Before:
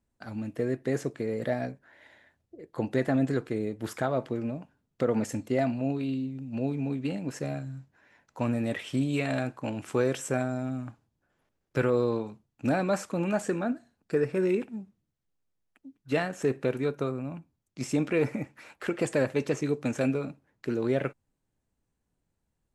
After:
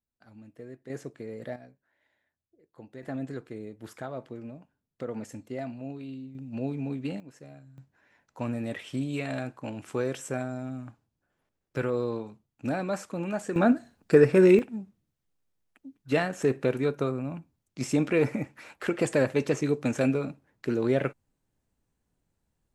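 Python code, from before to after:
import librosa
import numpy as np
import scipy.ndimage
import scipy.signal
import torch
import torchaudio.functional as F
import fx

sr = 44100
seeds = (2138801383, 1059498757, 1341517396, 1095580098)

y = fx.gain(x, sr, db=fx.steps((0.0, -15.0), (0.9, -8.0), (1.56, -17.5), (3.03, -9.0), (6.35, -2.0), (7.2, -15.0), (7.78, -3.5), (13.56, 8.5), (14.59, 2.0)))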